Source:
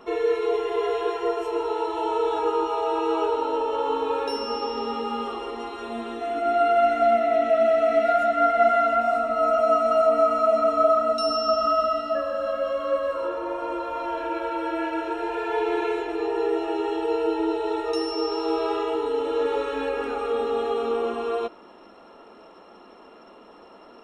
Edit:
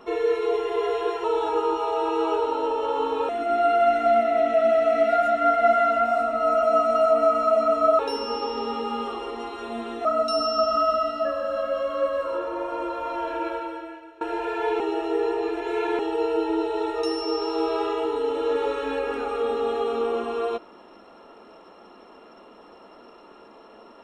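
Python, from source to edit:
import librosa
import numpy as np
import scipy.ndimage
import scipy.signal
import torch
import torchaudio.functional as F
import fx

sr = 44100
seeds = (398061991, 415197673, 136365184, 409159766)

y = fx.edit(x, sr, fx.cut(start_s=1.24, length_s=0.9),
    fx.move(start_s=4.19, length_s=2.06, to_s=10.95),
    fx.fade_out_to(start_s=14.39, length_s=0.72, curve='qua', floor_db=-20.5),
    fx.reverse_span(start_s=15.7, length_s=1.19), tone=tone)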